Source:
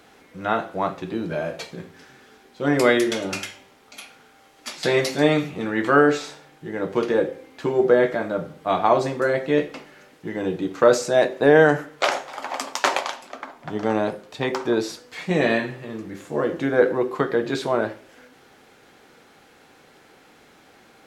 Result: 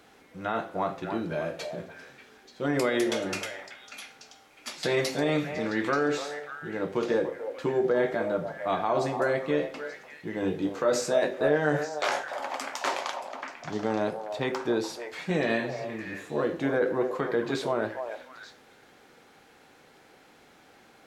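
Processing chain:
brickwall limiter −12 dBFS, peak gain reduction 9 dB
0:10.40–0:12.24: double-tracking delay 20 ms −4.5 dB
on a send: echo through a band-pass that steps 294 ms, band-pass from 710 Hz, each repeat 1.4 octaves, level −5 dB
on the sum: level −4.5 dB

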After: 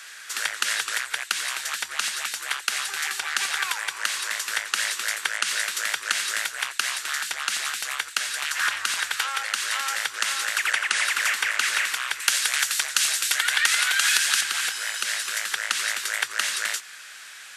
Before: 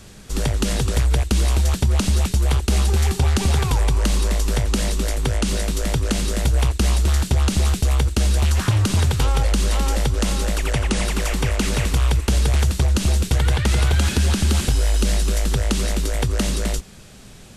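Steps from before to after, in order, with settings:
0:12.20–0:14.41: high-shelf EQ 3,000 Hz +9 dB
downward compressor 2.5 to 1, threshold −21 dBFS, peak gain reduction 6 dB
high-pass with resonance 1,600 Hz, resonance Q 2.9
level +4 dB

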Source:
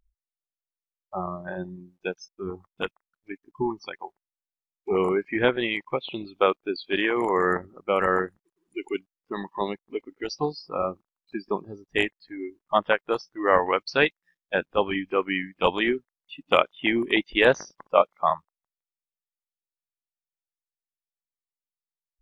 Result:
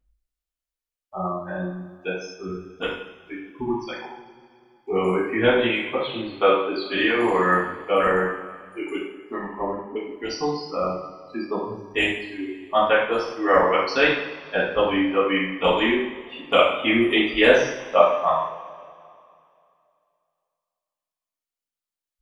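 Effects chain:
0:02.44–0:02.67: time-frequency box erased 470–1,200 Hz
0:09.34–0:09.96: linear-phase brick-wall low-pass 2,000 Hz
coupled-rooms reverb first 0.65 s, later 2.6 s, from −18 dB, DRR −8 dB
level −5 dB

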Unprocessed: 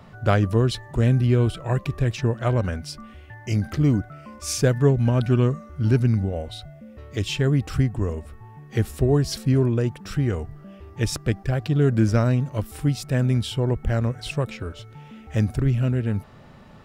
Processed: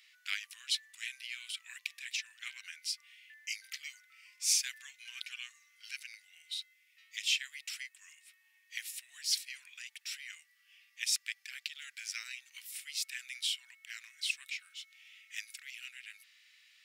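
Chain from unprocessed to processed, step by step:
elliptic high-pass filter 2,100 Hz, stop band 80 dB

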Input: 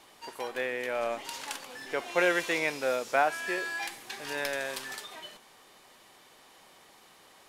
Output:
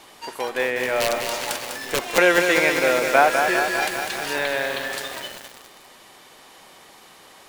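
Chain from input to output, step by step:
0:01.00–0:02.18: wrap-around overflow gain 22.5 dB
0:04.38–0:04.93: Chebyshev low-pass filter 4,400 Hz, order 10
feedback echo at a low word length 200 ms, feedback 80%, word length 7 bits, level −5.5 dB
level +9 dB

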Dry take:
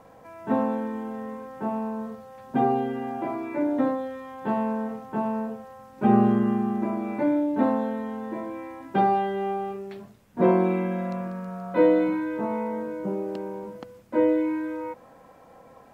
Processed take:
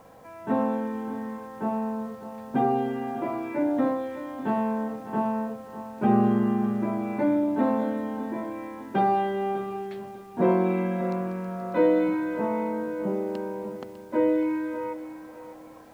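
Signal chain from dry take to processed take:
in parallel at −3 dB: brickwall limiter −17.5 dBFS, peak gain reduction 9.5 dB
on the sum: bit-depth reduction 10 bits, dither none
feedback echo at a low word length 601 ms, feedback 35%, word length 8 bits, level −13 dB
level −4.5 dB

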